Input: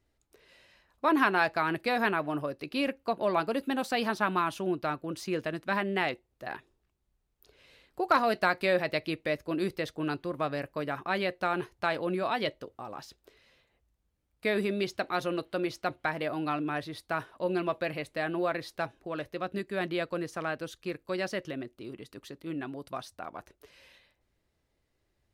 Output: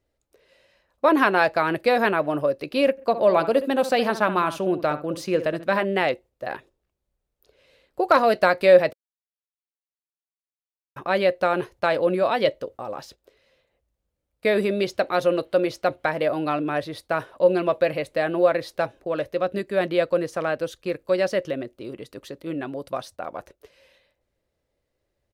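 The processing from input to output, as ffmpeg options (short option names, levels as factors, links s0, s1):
-filter_complex "[0:a]asplit=3[s0][s1][s2];[s0]afade=t=out:st=2.97:d=0.02[s3];[s1]asplit=2[s4][s5];[s5]adelay=67,lowpass=f=2000:p=1,volume=0.266,asplit=2[s6][s7];[s7]adelay=67,lowpass=f=2000:p=1,volume=0.16[s8];[s4][s6][s8]amix=inputs=3:normalize=0,afade=t=in:st=2.97:d=0.02,afade=t=out:st=5.83:d=0.02[s9];[s2]afade=t=in:st=5.83:d=0.02[s10];[s3][s9][s10]amix=inputs=3:normalize=0,asplit=3[s11][s12][s13];[s11]atrim=end=8.93,asetpts=PTS-STARTPTS,afade=t=out:st=8.926:d=0.004:c=hsin[s14];[s12]atrim=start=8.93:end=10.96,asetpts=PTS-STARTPTS,volume=0[s15];[s13]atrim=start=10.96,asetpts=PTS-STARTPTS,afade=t=in:d=0.004:c=hsin[s16];[s14][s15][s16]concat=n=3:v=0:a=1,agate=range=0.447:threshold=0.00224:ratio=16:detection=peak,equalizer=f=540:t=o:w=0.5:g=10,volume=1.78"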